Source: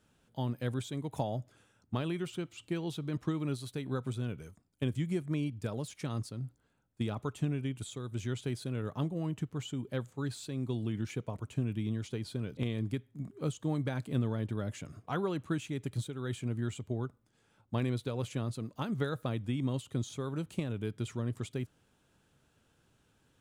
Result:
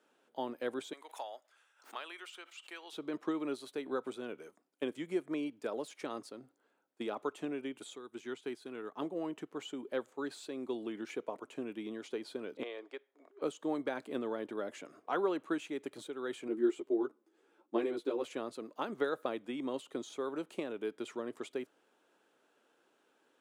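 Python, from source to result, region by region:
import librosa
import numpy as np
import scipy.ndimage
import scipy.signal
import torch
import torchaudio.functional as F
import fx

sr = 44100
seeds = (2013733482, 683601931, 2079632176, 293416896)

y = fx.chain(x, sr, fx.highpass(hz=1200.0, slope=12),
    fx.pre_swell(db_per_s=150.0), at=(0.93, 2.93))
y = fx.chain(y, sr, fx.peak_eq(hz=560.0, db=-12.0, octaves=0.32),
    fx.upward_expand(threshold_db=-46.0, expansion=1.5), at=(7.96, 9.02))
y = fx.chain(y, sr, fx.highpass(hz=450.0, slope=24),
    fx.air_absorb(metres=110.0), at=(12.63, 13.42))
y = fx.chain(y, sr, fx.peak_eq(hz=340.0, db=14.0, octaves=0.52),
    fx.ensemble(), at=(16.48, 18.24))
y = scipy.signal.sosfilt(scipy.signal.butter(4, 320.0, 'highpass', fs=sr, output='sos'), y)
y = fx.high_shelf(y, sr, hz=3000.0, db=-10.5)
y = y * librosa.db_to_amplitude(3.5)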